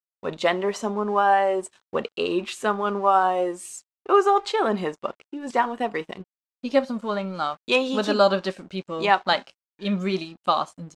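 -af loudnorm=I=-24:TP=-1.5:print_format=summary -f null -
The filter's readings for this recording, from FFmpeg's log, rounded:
Input Integrated:    -23.8 LUFS
Input True Peak:      -5.3 dBTP
Input LRA:             1.8 LU
Input Threshold:     -34.3 LUFS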